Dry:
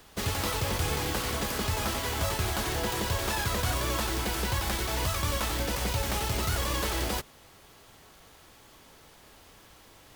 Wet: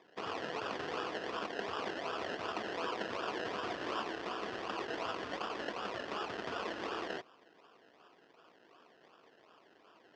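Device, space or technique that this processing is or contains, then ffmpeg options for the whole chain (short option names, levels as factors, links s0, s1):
circuit-bent sampling toy: -filter_complex "[0:a]asettb=1/sr,asplit=3[s0][s1][s2];[s0]atrim=end=5.234[s3];[s1]atrim=start=5.23:end=6.58,asetpts=PTS-STARTPTS,afade=t=in:d=0.004:c=qsin,afade=t=out:st=1.346:d=0.004:c=qsin,lowpass=9200[s4];[s2]atrim=start=6.576[s5];[s3][s4]acrossfade=d=0.004:c1=hsin:c2=qsin[s6];[s6][s5]acrossfade=d=0.004:c1=qsin:c2=hsin,acrusher=samples=30:mix=1:aa=0.000001:lfo=1:lforange=18:lforate=2.7,highpass=510,equalizer=f=570:t=q:w=4:g=-7,equalizer=f=850:t=q:w=4:g=-8,equalizer=f=2200:t=q:w=4:g=-8,equalizer=f=3900:t=q:w=4:g=-8,lowpass=f=4400:w=0.5412,lowpass=f=4400:w=1.3066"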